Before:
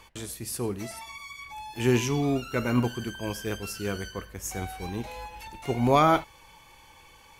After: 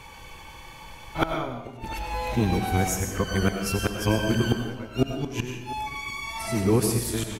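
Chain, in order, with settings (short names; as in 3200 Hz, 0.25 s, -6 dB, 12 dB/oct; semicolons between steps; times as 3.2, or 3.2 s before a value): whole clip reversed; tone controls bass +4 dB, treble -3 dB; flipped gate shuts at -16 dBFS, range -24 dB; outdoor echo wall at 120 m, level -18 dB; reverb RT60 0.75 s, pre-delay 60 ms, DRR 4 dB; gain +8 dB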